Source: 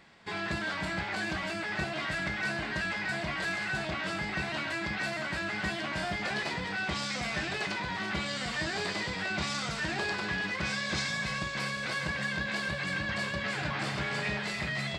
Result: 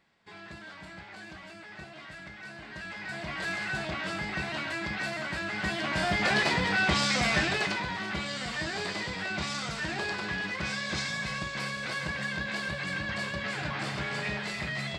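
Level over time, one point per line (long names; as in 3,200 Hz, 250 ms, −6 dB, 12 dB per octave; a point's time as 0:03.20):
0:02.50 −12 dB
0:03.51 0 dB
0:05.50 0 dB
0:06.29 +7.5 dB
0:07.35 +7.5 dB
0:08.02 −0.5 dB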